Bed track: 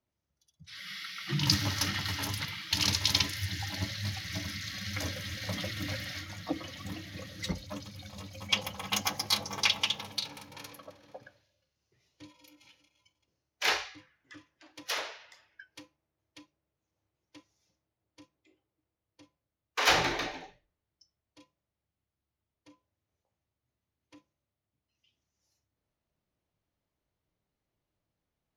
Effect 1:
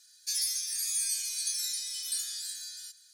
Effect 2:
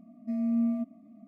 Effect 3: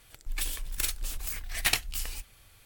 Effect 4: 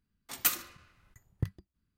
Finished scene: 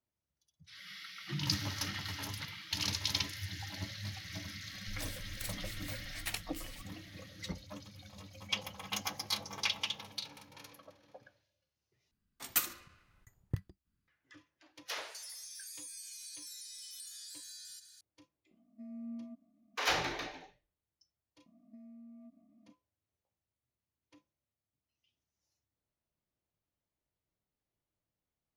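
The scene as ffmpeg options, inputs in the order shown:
ffmpeg -i bed.wav -i cue0.wav -i cue1.wav -i cue2.wav -i cue3.wav -filter_complex "[2:a]asplit=2[link_01][link_02];[0:a]volume=-7dB[link_03];[1:a]acompressor=threshold=-46dB:ratio=6:attack=3.2:release=140:knee=1:detection=peak[link_04];[link_02]acompressor=threshold=-42dB:ratio=8:attack=33:release=47:knee=1:detection=rms[link_05];[link_03]asplit=2[link_06][link_07];[link_06]atrim=end=12.114[link_08];[4:a]atrim=end=1.97,asetpts=PTS-STARTPTS,volume=-3.5dB[link_09];[link_07]atrim=start=14.076[link_10];[3:a]atrim=end=2.65,asetpts=PTS-STARTPTS,volume=-13dB,afade=type=in:duration=0.004:curve=hsin,afade=type=out:start_time=2.646:duration=0.004:curve=hsin,adelay=203301S[link_11];[link_04]atrim=end=3.13,asetpts=PTS-STARTPTS,afade=type=in:duration=0.004:curve=hsin,afade=type=out:start_time=3.126:duration=0.004:curve=hsin,adelay=14880[link_12];[link_01]atrim=end=1.27,asetpts=PTS-STARTPTS,volume=-17dB,afade=type=in:duration=0.004:curve=hsin,afade=type=out:start_time=1.266:duration=0.004:curve=hsin,adelay=18510[link_13];[link_05]atrim=end=1.27,asetpts=PTS-STARTPTS,volume=-12.5dB,afade=type=in:duration=0.004:curve=hsin,afade=type=out:start_time=1.266:duration=0.004:curve=hsin,adelay=21460[link_14];[link_08][link_09]acrossfade=duration=0.004:curve1=hsin:curve2=hsin[link_15];[link_15][link_10]acrossfade=duration=0.004:curve1=hsin:curve2=hsin[link_16];[link_16][link_11][link_12][link_13][link_14]amix=inputs=5:normalize=0" out.wav

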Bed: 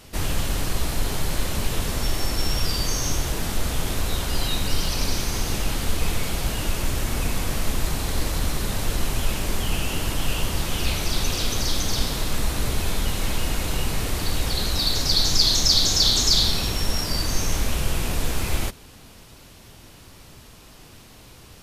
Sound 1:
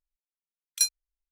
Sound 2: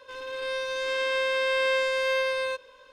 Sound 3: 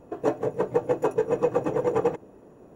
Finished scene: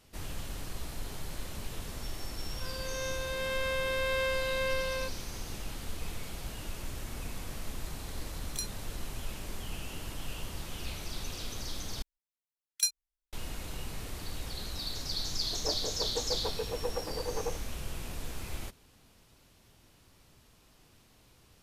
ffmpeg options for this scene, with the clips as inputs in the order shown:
ffmpeg -i bed.wav -i cue0.wav -i cue1.wav -i cue2.wav -filter_complex "[1:a]asplit=2[link_01][link_02];[0:a]volume=-15dB[link_03];[link_01]acompressor=threshold=-25dB:ratio=6:attack=3.2:release=140:knee=1:detection=peak[link_04];[3:a]highpass=390[link_05];[link_03]asplit=2[link_06][link_07];[link_06]atrim=end=12.024[link_08];[link_02]atrim=end=1.31,asetpts=PTS-STARTPTS,volume=-4.5dB[link_09];[link_07]atrim=start=13.326[link_10];[2:a]atrim=end=2.92,asetpts=PTS-STARTPTS,volume=-6.5dB,afade=type=in:duration=0.004:curve=hsin,afade=type=out:start_time=2.916:duration=0.004:curve=hsin,adelay=2520[link_11];[link_04]atrim=end=1.31,asetpts=PTS-STARTPTS,volume=-6dB,afade=type=in:duration=0.004:curve=hsin,afade=type=out:start_time=1.306:duration=0.004:curve=hsin,adelay=343098S[link_12];[link_05]atrim=end=2.75,asetpts=PTS-STARTPTS,volume=-11dB,afade=type=in:duration=0.004:curve=hsin,afade=type=out:start_time=2.746:duration=0.004:curve=hsin,adelay=15410[link_13];[link_08][link_09]acrossfade=duration=0.004:curve1=hsin:curve2=hsin[link_14];[link_14][link_10]acrossfade=duration=0.004:curve1=hsin:curve2=hsin[link_15];[link_15][link_11][link_12][link_13]amix=inputs=4:normalize=0" out.wav

